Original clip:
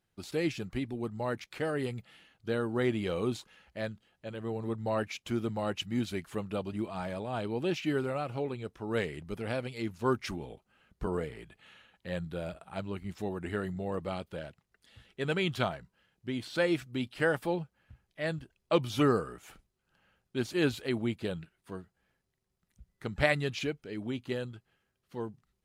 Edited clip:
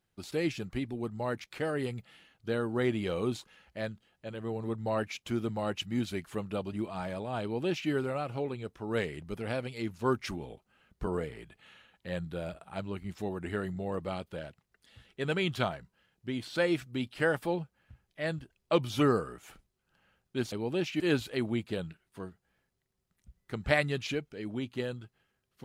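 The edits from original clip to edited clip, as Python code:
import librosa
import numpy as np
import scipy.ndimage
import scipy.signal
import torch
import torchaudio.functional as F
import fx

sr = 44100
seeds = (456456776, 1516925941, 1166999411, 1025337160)

y = fx.edit(x, sr, fx.duplicate(start_s=7.42, length_s=0.48, to_s=20.52), tone=tone)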